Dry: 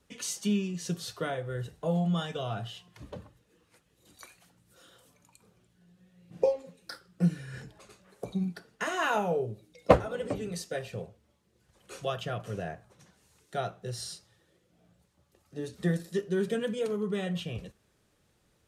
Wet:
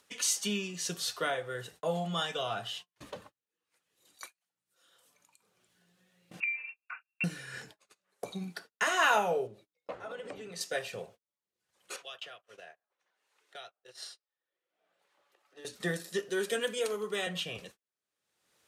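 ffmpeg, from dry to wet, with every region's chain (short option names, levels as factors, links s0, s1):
-filter_complex "[0:a]asettb=1/sr,asplit=3[s0][s1][s2];[s0]atrim=end=6.404[s3];[s1]atrim=start=6.4:end=7.24,asetpts=PTS-STARTPTS,afade=t=in:d=0.004:c=qsin,afade=t=out:st=0.836:d=0.004:c=qsin,acompressor=threshold=0.0178:ratio=6:attack=3.2:release=140:knee=1:detection=peak,lowpass=f=2500:t=q:w=0.5098,lowpass=f=2500:t=q:w=0.6013,lowpass=f=2500:t=q:w=0.9,lowpass=f=2500:t=q:w=2.563,afreqshift=-2900[s4];[s2]atrim=start=7.236[s5];[s3][s4]acrossfade=d=0.004:c1=hsin:c2=qsin[s6];[s6][s5]acrossfade=d=0.004:c1=qsin:c2=hsin,asettb=1/sr,asplit=3[s7][s8][s9];[s7]atrim=end=9.474[s10];[s8]atrim=start=9.47:end=10.61,asetpts=PTS-STARTPTS,afade=t=in:d=0.004:c=qsin,afade=t=out:st=1.136:d=0.004:c=qsin,lowpass=f=3200:p=1,acompressor=threshold=0.0141:ratio=8:attack=3.2:release=140:knee=1:detection=peak[s11];[s9]atrim=start=10.606[s12];[s10][s11]acrossfade=d=0.004:c1=hsin:c2=qsin[s13];[s13][s12]acrossfade=d=0.004:c1=qsin:c2=hsin,asettb=1/sr,asplit=3[s14][s15][s16];[s14]atrim=end=11.964[s17];[s15]atrim=start=11.96:end=15.65,asetpts=PTS-STARTPTS,afade=t=in:d=0.004:c=qsin,afade=t=out:st=3.686:d=0.004:c=qsin,acrossover=split=330 3400:gain=0.0708 1 0.2[s18][s19][s20];[s18][s19][s20]amix=inputs=3:normalize=0,acrossover=split=140|3000[s21][s22][s23];[s22]acompressor=threshold=0.00316:ratio=5:attack=3.2:release=140:knee=2.83:detection=peak[s24];[s21][s24][s23]amix=inputs=3:normalize=0[s25];[s16]atrim=start=15.646[s26];[s17][s25]acrossfade=d=0.004:c1=hsin:c2=qsin[s27];[s27][s26]acrossfade=d=0.004:c1=qsin:c2=hsin,asettb=1/sr,asplit=3[s28][s29][s30];[s28]atrim=end=16.294[s31];[s29]atrim=start=16.29:end=17.27,asetpts=PTS-STARTPTS,afade=t=in:d=0.004:c=qsin,afade=t=out:st=0.976:d=0.004:c=qsin,highpass=f=230:w=0.5412,highpass=f=230:w=1.3066,highshelf=f=6200:g=6[s32];[s30]atrim=start=17.266[s33];[s31][s32]acrossfade=d=0.004:c1=hsin:c2=qsin[s34];[s34][s33]acrossfade=d=0.004:c1=qsin:c2=hsin,agate=range=0.0126:threshold=0.00355:ratio=16:detection=peak,highpass=f=1000:p=1,acompressor=mode=upward:threshold=0.00398:ratio=2.5,volume=2"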